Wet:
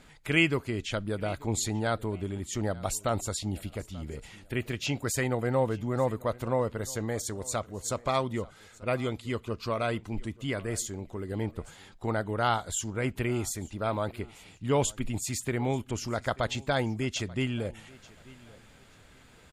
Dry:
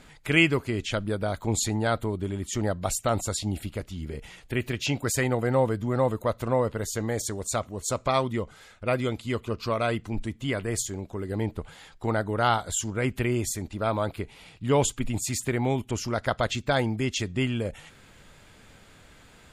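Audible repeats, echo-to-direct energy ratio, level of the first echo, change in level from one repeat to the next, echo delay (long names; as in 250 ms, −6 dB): 2, −21.5 dB, −22.0 dB, −11.5 dB, 886 ms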